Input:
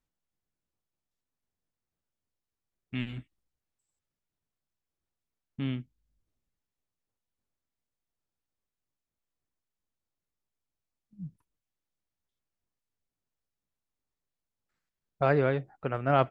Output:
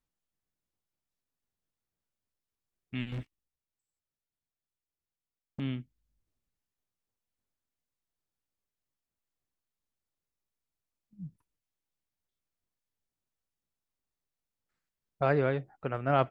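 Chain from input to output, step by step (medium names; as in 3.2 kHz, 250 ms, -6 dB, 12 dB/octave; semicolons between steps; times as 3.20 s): 3.12–5.60 s: waveshaping leveller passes 3; trim -2 dB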